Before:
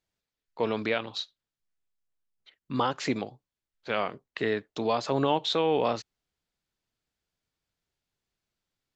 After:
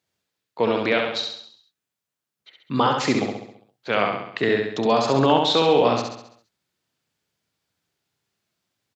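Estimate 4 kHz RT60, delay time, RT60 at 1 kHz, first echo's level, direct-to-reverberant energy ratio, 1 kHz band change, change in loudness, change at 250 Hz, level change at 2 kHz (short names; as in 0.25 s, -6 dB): none, 67 ms, none, -4.0 dB, none, +8.5 dB, +8.0 dB, +8.0 dB, +8.5 dB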